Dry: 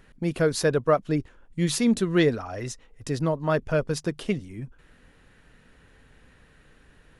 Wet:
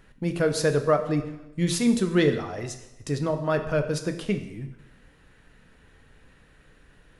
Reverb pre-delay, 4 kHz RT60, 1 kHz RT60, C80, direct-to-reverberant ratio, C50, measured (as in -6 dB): 4 ms, 0.85 s, 0.90 s, 12.0 dB, 6.5 dB, 10.0 dB